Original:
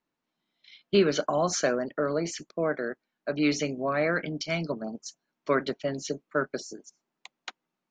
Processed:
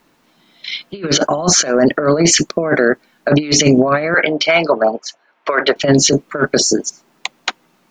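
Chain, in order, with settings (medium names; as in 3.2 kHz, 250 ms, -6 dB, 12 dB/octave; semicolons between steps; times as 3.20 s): 4.14–5.76 s: three-band isolator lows -24 dB, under 460 Hz, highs -22 dB, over 3.2 kHz; compressor with a negative ratio -32 dBFS, ratio -0.5; loudness maximiser +23.5 dB; trim -1 dB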